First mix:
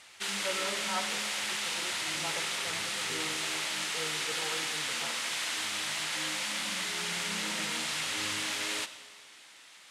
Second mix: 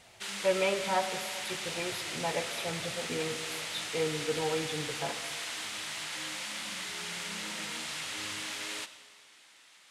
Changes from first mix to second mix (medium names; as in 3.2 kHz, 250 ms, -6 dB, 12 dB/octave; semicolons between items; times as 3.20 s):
speech: remove four-pole ladder low-pass 1.4 kHz, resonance 75%; background -4.5 dB